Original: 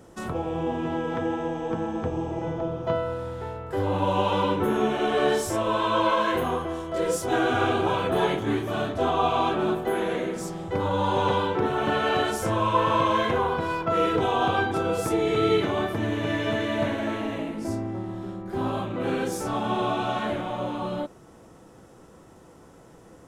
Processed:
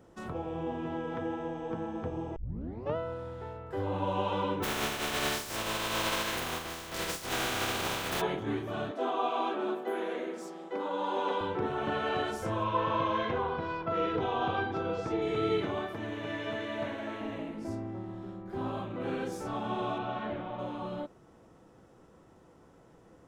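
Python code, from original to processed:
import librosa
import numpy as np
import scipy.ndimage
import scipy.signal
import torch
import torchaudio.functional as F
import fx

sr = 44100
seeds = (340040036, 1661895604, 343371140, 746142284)

y = fx.spec_flatten(x, sr, power=0.28, at=(4.62, 8.2), fade=0.02)
y = fx.steep_highpass(y, sr, hz=230.0, slope=36, at=(8.91, 11.41))
y = fx.lowpass(y, sr, hz=5900.0, slope=24, at=(12.64, 15.22))
y = fx.low_shelf(y, sr, hz=290.0, db=-7.0, at=(15.79, 17.21))
y = fx.air_absorb(y, sr, metres=160.0, at=(19.98, 20.59))
y = fx.edit(y, sr, fx.tape_start(start_s=2.36, length_s=0.6), tone=tone)
y = fx.peak_eq(y, sr, hz=11000.0, db=-8.0, octaves=1.5)
y = y * 10.0 ** (-7.5 / 20.0)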